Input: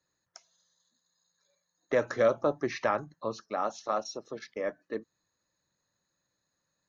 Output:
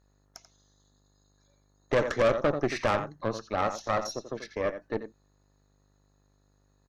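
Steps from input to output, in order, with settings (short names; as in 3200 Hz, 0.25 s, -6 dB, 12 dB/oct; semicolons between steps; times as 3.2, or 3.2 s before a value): buzz 50 Hz, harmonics 29, -69 dBFS -6 dB/oct; outdoor echo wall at 15 m, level -10 dB; tube stage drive 26 dB, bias 0.8; gain +7.5 dB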